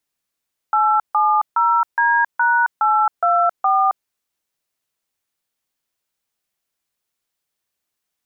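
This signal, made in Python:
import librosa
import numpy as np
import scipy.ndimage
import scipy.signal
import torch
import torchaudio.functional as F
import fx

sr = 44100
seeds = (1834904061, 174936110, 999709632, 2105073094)

y = fx.dtmf(sr, digits='870D#824', tone_ms=269, gap_ms=147, level_db=-15.5)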